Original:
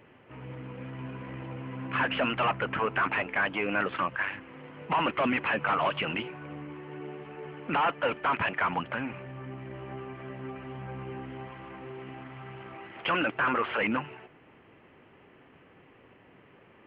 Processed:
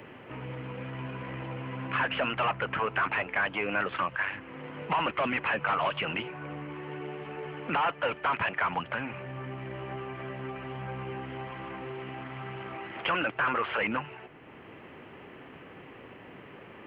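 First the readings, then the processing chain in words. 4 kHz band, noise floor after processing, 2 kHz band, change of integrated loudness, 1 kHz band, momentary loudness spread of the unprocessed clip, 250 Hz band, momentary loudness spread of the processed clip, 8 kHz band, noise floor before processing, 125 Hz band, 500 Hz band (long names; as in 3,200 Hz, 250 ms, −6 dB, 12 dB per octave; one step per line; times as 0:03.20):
−0.5 dB, −49 dBFS, 0.0 dB, −1.5 dB, −0.5 dB, 16 LU, −3.0 dB, 20 LU, can't be measured, −58 dBFS, +0.5 dB, −1.0 dB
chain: dynamic equaliser 260 Hz, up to −5 dB, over −47 dBFS, Q 1.3
multiband upward and downward compressor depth 40%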